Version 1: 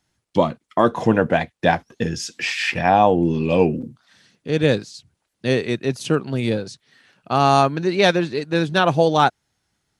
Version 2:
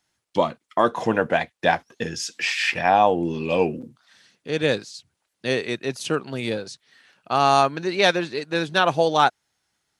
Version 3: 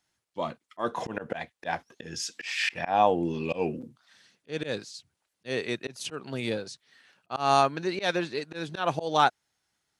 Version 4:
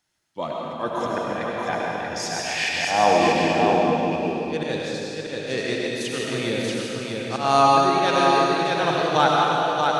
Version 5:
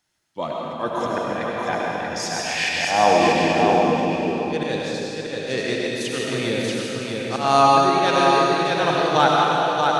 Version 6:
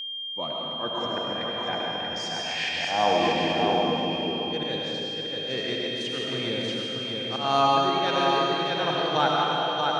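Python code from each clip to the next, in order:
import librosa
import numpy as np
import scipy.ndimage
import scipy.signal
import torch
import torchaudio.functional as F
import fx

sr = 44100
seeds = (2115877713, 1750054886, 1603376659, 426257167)

y1 = fx.low_shelf(x, sr, hz=320.0, db=-11.0)
y2 = fx.auto_swell(y1, sr, attack_ms=152.0)
y2 = y2 * librosa.db_to_amplitude(-4.0)
y3 = y2 + 10.0 ** (-3.5 / 20.0) * np.pad(y2, (int(634 * sr / 1000.0), 0))[:len(y2)]
y3 = fx.rev_freeverb(y3, sr, rt60_s=2.7, hf_ratio=0.95, predelay_ms=55, drr_db=-3.0)
y3 = y3 * librosa.db_to_amplitude(2.0)
y4 = y3 + 10.0 ** (-14.5 / 20.0) * np.pad(y3, (int(730 * sr / 1000.0), 0))[:len(y3)]
y4 = y4 * librosa.db_to_amplitude(1.5)
y5 = scipy.signal.sosfilt(scipy.signal.butter(2, 5600.0, 'lowpass', fs=sr, output='sos'), y4)
y5 = y5 + 10.0 ** (-25.0 / 20.0) * np.sin(2.0 * np.pi * 3200.0 * np.arange(len(y5)) / sr)
y5 = y5 * librosa.db_to_amplitude(-6.5)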